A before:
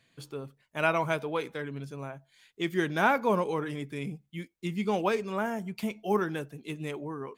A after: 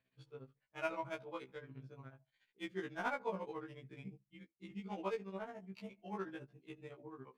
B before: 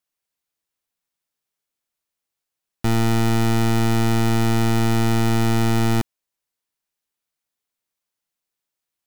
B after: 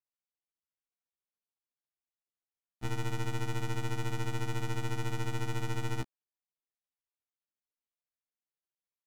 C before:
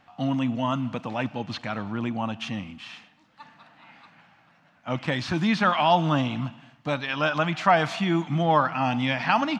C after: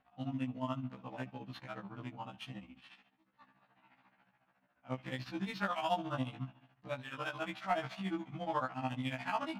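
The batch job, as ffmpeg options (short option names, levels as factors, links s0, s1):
-af "adynamicsmooth=sensitivity=5.5:basefreq=3500,tremolo=f=14:d=0.97,afftfilt=real='re*1.73*eq(mod(b,3),0)':imag='im*1.73*eq(mod(b,3),0)':win_size=2048:overlap=0.75,volume=0.398"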